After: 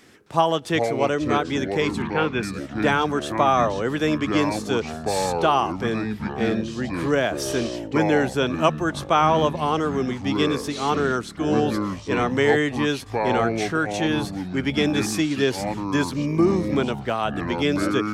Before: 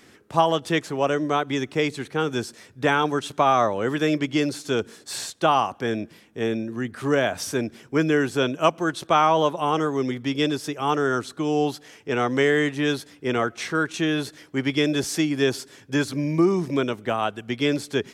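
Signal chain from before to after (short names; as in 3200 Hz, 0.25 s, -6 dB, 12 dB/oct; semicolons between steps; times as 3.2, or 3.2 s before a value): 2.02–2.43 synth low-pass 2400 Hz, resonance Q 2.6; echoes that change speed 0.263 s, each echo -6 st, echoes 3, each echo -6 dB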